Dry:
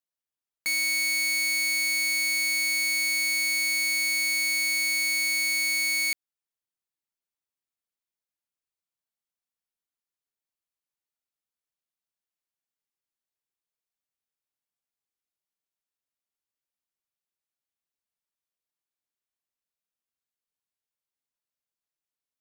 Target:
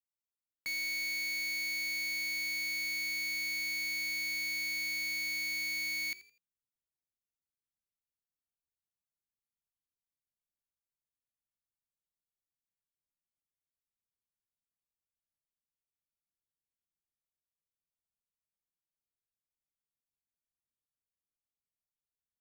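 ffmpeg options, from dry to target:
ffmpeg -i in.wav -filter_complex "[0:a]asubboost=boost=3.5:cutoff=220,acrossover=split=350|810|6100[link_01][link_02][link_03][link_04];[link_03]acrusher=bits=6:dc=4:mix=0:aa=0.000001[link_05];[link_04]alimiter=level_in=8dB:limit=-24dB:level=0:latency=1,volume=-8dB[link_06];[link_01][link_02][link_05][link_06]amix=inputs=4:normalize=0,asplit=4[link_07][link_08][link_09][link_10];[link_08]adelay=83,afreqshift=60,volume=-18dB[link_11];[link_09]adelay=166,afreqshift=120,volume=-27.9dB[link_12];[link_10]adelay=249,afreqshift=180,volume=-37.8dB[link_13];[link_07][link_11][link_12][link_13]amix=inputs=4:normalize=0,volume=-8.5dB" out.wav

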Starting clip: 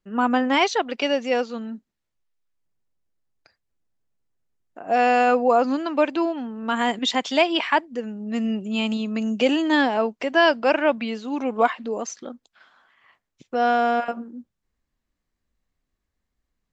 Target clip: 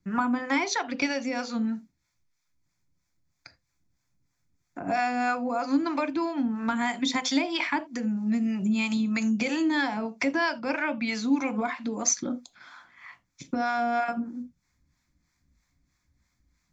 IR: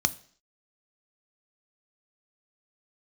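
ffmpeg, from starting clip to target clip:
-filter_complex "[0:a]acrossover=split=520[link_01][link_02];[link_01]aeval=exprs='val(0)*(1-0.7/2+0.7/2*cos(2*PI*3.1*n/s))':channel_layout=same[link_03];[link_02]aeval=exprs='val(0)*(1-0.7/2-0.7/2*cos(2*PI*3.1*n/s))':channel_layout=same[link_04];[link_03][link_04]amix=inputs=2:normalize=0,acompressor=threshold=-34dB:ratio=5,asplit=2[link_05][link_06];[1:a]atrim=start_sample=2205,atrim=end_sample=3969[link_07];[link_06][link_07]afir=irnorm=-1:irlink=0,volume=-1dB[link_08];[link_05][link_08]amix=inputs=2:normalize=0,volume=3.5dB"

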